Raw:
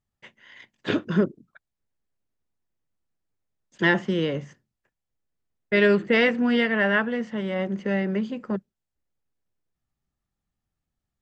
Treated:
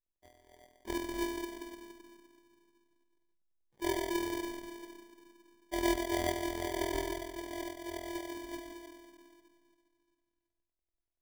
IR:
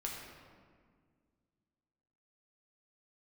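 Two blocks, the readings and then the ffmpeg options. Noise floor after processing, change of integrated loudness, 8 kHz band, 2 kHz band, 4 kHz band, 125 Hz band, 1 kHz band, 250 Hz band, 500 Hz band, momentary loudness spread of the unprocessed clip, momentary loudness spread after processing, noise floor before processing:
below −85 dBFS, −13.5 dB, can't be measured, −17.5 dB, −9.0 dB, −18.5 dB, −6.0 dB, −12.5 dB, −12.5 dB, 10 LU, 19 LU, −85 dBFS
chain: -filter_complex "[1:a]atrim=start_sample=2205[link_01];[0:a][link_01]afir=irnorm=-1:irlink=0,afftfilt=real='hypot(re,im)*cos(PI*b)':imag='0':win_size=512:overlap=0.75,acrusher=samples=33:mix=1:aa=0.000001,volume=-8.5dB"

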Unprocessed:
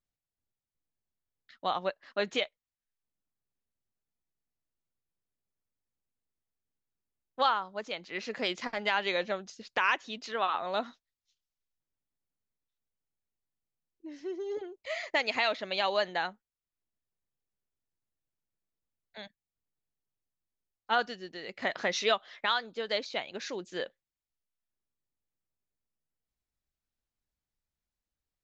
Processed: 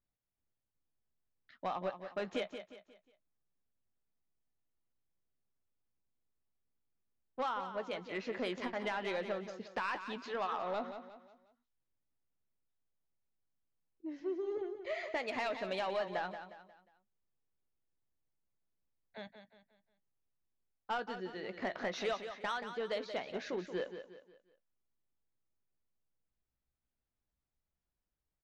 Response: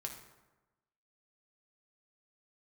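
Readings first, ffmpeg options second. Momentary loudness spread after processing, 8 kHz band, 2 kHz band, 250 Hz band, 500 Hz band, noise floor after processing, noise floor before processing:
14 LU, can't be measured, −9.0 dB, −1.0 dB, −4.0 dB, below −85 dBFS, below −85 dBFS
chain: -filter_complex "[0:a]lowpass=frequency=1300:poles=1,acompressor=threshold=-34dB:ratio=2.5,asoftclip=type=tanh:threshold=-30dB,asplit=2[link_01][link_02];[link_02]adelay=16,volume=-13dB[link_03];[link_01][link_03]amix=inputs=2:normalize=0,aecho=1:1:179|358|537|716:0.335|0.131|0.0509|0.0199,volume=1dB"

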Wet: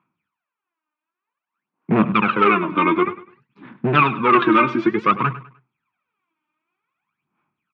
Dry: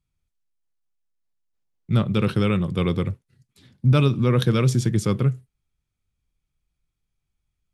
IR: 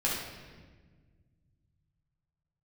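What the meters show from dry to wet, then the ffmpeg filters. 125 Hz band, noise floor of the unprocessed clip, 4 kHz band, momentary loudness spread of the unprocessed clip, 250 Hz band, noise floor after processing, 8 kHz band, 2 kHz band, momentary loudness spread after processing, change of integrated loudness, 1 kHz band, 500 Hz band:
−8.5 dB, −80 dBFS, +0.5 dB, 8 LU, +3.5 dB, below −85 dBFS, below −20 dB, +13.0 dB, 8 LU, +4.0 dB, +17.0 dB, +4.5 dB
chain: -af "equalizer=frequency=1100:width=1.5:gain=14.5,aphaser=in_gain=1:out_gain=1:delay=3.3:decay=0.78:speed=0.54:type=sinusoidal,asoftclip=type=hard:threshold=-10.5dB,highpass=frequency=180:width=0.5412,highpass=frequency=180:width=1.3066,equalizer=frequency=220:width_type=q:width=4:gain=4,equalizer=frequency=320:width_type=q:width=4:gain=6,equalizer=frequency=500:width_type=q:width=4:gain=-4,equalizer=frequency=950:width_type=q:width=4:gain=4,equalizer=frequency=1500:width_type=q:width=4:gain=4,equalizer=frequency=2500:width_type=q:width=4:gain=9,lowpass=frequency=2900:width=0.5412,lowpass=frequency=2900:width=1.3066,aecho=1:1:101|202|303:0.168|0.052|0.0161"

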